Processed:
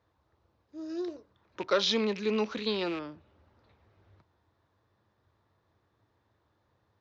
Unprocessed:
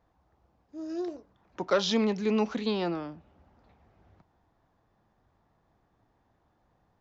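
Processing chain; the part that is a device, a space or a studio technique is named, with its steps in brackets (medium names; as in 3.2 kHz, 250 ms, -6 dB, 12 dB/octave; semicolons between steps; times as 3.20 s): car door speaker with a rattle (rattle on loud lows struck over -39 dBFS, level -32 dBFS; cabinet simulation 91–6600 Hz, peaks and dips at 92 Hz +7 dB, 170 Hz -9 dB, 250 Hz -6 dB, 750 Hz -9 dB, 3.9 kHz +5 dB)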